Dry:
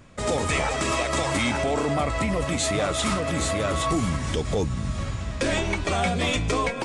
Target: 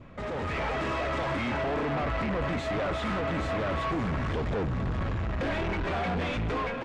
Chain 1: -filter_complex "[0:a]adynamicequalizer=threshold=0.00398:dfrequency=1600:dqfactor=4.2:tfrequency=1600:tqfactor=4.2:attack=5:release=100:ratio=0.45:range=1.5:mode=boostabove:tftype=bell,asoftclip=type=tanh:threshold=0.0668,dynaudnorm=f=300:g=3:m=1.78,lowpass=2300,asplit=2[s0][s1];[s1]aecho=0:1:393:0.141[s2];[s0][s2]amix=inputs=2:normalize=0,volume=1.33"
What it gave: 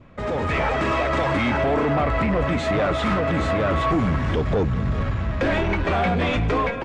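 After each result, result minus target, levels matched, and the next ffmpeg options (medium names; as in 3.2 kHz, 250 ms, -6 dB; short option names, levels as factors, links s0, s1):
echo 140 ms early; saturation: distortion -7 dB
-filter_complex "[0:a]adynamicequalizer=threshold=0.00398:dfrequency=1600:dqfactor=4.2:tfrequency=1600:tqfactor=4.2:attack=5:release=100:ratio=0.45:range=1.5:mode=boostabove:tftype=bell,asoftclip=type=tanh:threshold=0.0668,dynaudnorm=f=300:g=3:m=1.78,lowpass=2300,asplit=2[s0][s1];[s1]aecho=0:1:533:0.141[s2];[s0][s2]amix=inputs=2:normalize=0,volume=1.33"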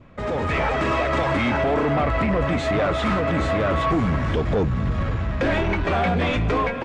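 saturation: distortion -7 dB
-filter_complex "[0:a]adynamicequalizer=threshold=0.00398:dfrequency=1600:dqfactor=4.2:tfrequency=1600:tqfactor=4.2:attack=5:release=100:ratio=0.45:range=1.5:mode=boostabove:tftype=bell,asoftclip=type=tanh:threshold=0.0178,dynaudnorm=f=300:g=3:m=1.78,lowpass=2300,asplit=2[s0][s1];[s1]aecho=0:1:533:0.141[s2];[s0][s2]amix=inputs=2:normalize=0,volume=1.33"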